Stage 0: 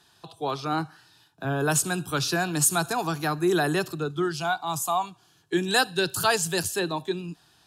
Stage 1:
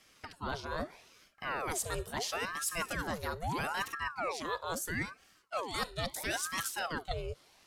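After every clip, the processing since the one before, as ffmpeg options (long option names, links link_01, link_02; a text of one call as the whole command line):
ffmpeg -i in.wav -af "areverse,acompressor=threshold=-30dB:ratio=6,areverse,aeval=exprs='val(0)*sin(2*PI*860*n/s+860*0.75/0.76*sin(2*PI*0.76*n/s))':channel_layout=same" out.wav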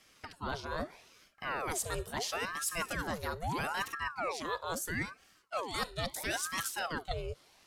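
ffmpeg -i in.wav -af anull out.wav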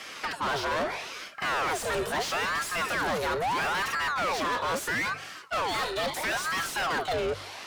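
ffmpeg -i in.wav -filter_complex "[0:a]bandreject=frequency=49.2:width_type=h:width=4,bandreject=frequency=98.4:width_type=h:width=4,bandreject=frequency=147.6:width_type=h:width=4,asplit=2[link_01][link_02];[link_02]highpass=frequency=720:poles=1,volume=36dB,asoftclip=type=tanh:threshold=-18dB[link_03];[link_01][link_03]amix=inputs=2:normalize=0,lowpass=frequency=2500:poles=1,volume=-6dB,volume=-2.5dB" out.wav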